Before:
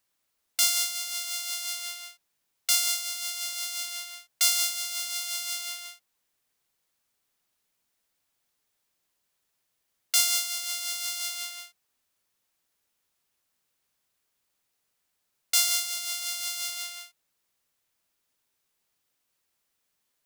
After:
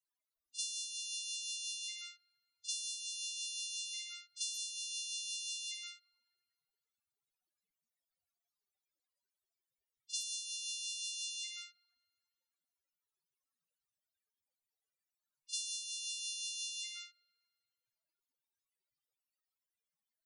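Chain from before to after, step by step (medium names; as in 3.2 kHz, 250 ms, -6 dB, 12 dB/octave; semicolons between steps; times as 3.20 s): dynamic bell 1.8 kHz, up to -6 dB, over -49 dBFS, Q 2.2; compression 5:1, threshold -29 dBFS, peak gain reduction 12 dB; reverse echo 39 ms -13.5 dB; loudest bins only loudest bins 16; spring tank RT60 1.9 s, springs 40/44 ms, chirp 20 ms, DRR 19 dB; trim -3 dB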